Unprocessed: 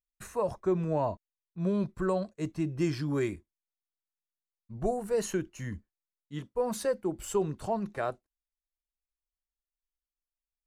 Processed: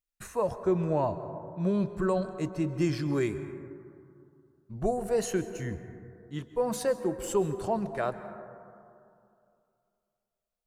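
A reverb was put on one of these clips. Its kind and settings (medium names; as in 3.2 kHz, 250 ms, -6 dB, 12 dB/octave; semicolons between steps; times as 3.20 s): plate-style reverb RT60 2.5 s, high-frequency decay 0.25×, pre-delay 120 ms, DRR 11 dB; trim +1.5 dB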